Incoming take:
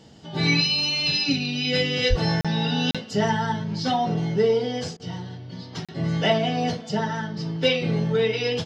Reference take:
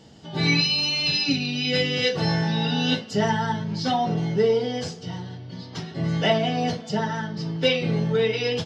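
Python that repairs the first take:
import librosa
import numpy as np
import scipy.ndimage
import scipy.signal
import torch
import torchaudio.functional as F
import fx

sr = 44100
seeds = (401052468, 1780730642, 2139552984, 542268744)

y = fx.fix_deplosive(x, sr, at_s=(2.09,))
y = fx.fix_interpolate(y, sr, at_s=(2.41, 2.91, 5.85), length_ms=36.0)
y = fx.fix_interpolate(y, sr, at_s=(4.97,), length_ms=26.0)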